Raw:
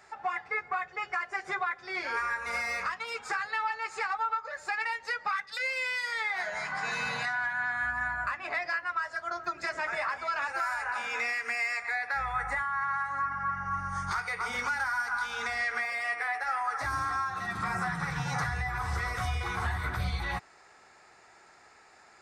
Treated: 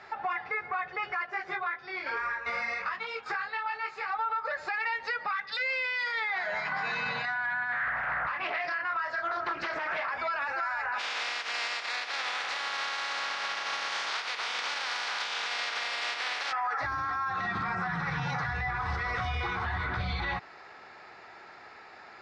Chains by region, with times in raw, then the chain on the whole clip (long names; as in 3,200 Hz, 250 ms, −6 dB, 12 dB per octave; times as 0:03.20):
0:01.26–0:04.11: shaped tremolo saw down 2.5 Hz, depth 60% + micro pitch shift up and down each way 22 cents
0:07.72–0:10.11: double-tracking delay 27 ms −5.5 dB + highs frequency-modulated by the lows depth 0.52 ms
0:10.98–0:16.51: compressing power law on the bin magnitudes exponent 0.2 + high-pass filter 680 Hz
whole clip: low-pass filter 4,500 Hz 24 dB per octave; low-shelf EQ 65 Hz −10 dB; brickwall limiter −32 dBFS; level +8 dB